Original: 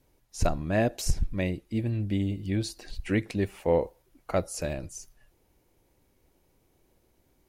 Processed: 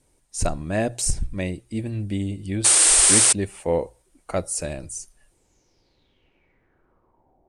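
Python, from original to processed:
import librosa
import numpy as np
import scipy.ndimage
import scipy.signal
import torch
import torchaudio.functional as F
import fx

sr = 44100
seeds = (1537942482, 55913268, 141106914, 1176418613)

y = fx.spec_paint(x, sr, seeds[0], shape='noise', start_s=2.64, length_s=0.69, low_hz=300.0, high_hz=11000.0, level_db=-25.0)
y = fx.filter_sweep_lowpass(y, sr, from_hz=8800.0, to_hz=720.0, start_s=5.33, end_s=7.4, q=6.3)
y = fx.hum_notches(y, sr, base_hz=60, count=2)
y = y * librosa.db_to_amplitude(1.5)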